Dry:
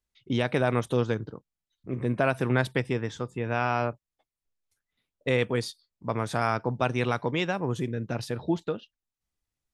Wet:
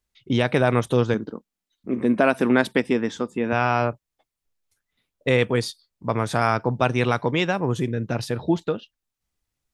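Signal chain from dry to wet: 1.14–3.53 resonant low shelf 170 Hz -7 dB, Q 3; gain +5.5 dB

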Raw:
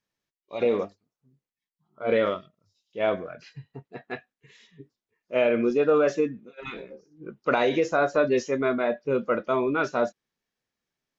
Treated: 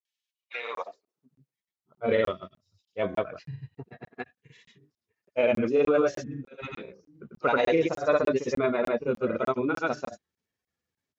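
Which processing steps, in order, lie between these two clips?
bin magnitudes rounded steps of 15 dB; grains, pitch spread up and down by 0 st; high-pass sweep 3000 Hz -> 75 Hz, 0.38–1.64; crackling interface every 0.30 s, samples 1024, zero, from 0.75

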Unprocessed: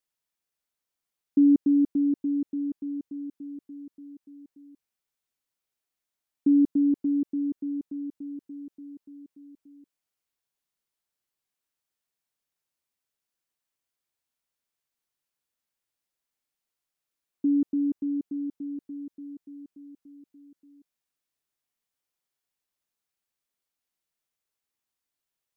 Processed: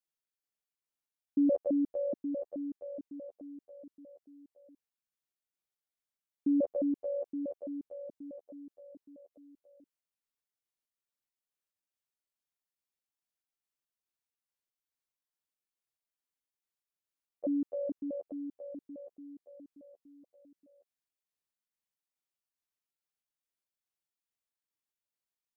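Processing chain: trilling pitch shifter +11.5 st, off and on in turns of 0.213 s; gain -8 dB

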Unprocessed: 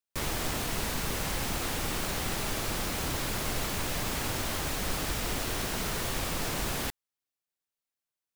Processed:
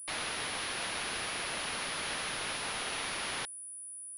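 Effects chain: HPF 810 Hz 6 dB/oct; speed mistake 7.5 ips tape played at 15 ips; pulse-width modulation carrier 9800 Hz; gain +2.5 dB

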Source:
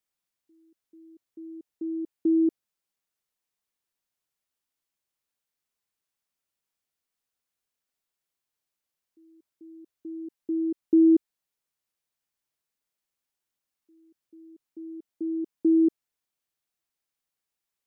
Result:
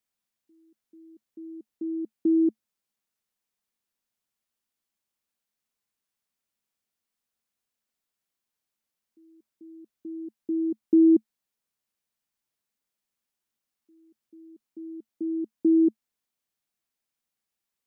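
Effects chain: bell 220 Hz +8 dB 0.28 oct

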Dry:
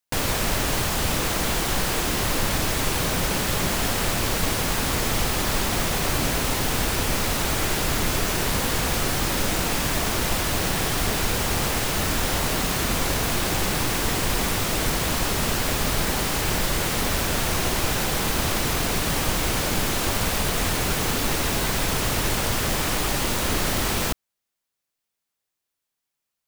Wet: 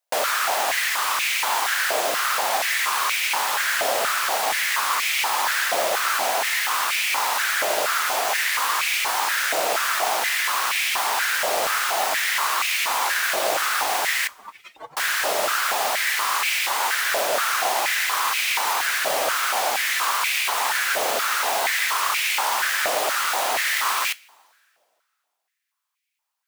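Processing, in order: 14.27–14.97 spectral contrast raised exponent 3.3; two-slope reverb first 0.21 s, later 2.2 s, from -22 dB, DRR 14 dB; stepped high-pass 4.2 Hz 620–2300 Hz

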